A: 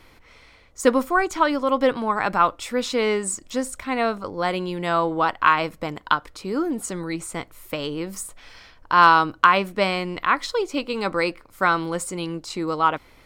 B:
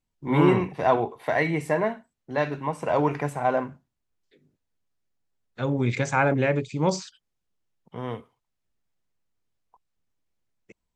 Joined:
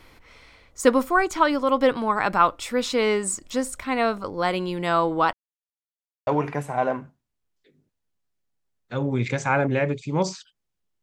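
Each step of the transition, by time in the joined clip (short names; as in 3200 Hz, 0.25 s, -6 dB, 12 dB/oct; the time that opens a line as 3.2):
A
5.33–6.27 mute
6.27 switch to B from 2.94 s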